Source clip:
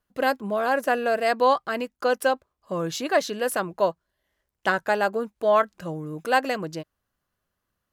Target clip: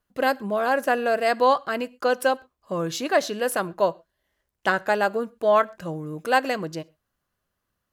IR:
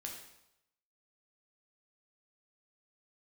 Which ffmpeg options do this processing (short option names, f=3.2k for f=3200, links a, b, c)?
-filter_complex "[0:a]asplit=2[a][b];[1:a]atrim=start_sample=2205,atrim=end_sample=6174[c];[b][c]afir=irnorm=-1:irlink=0,volume=-15dB[d];[a][d]amix=inputs=2:normalize=0"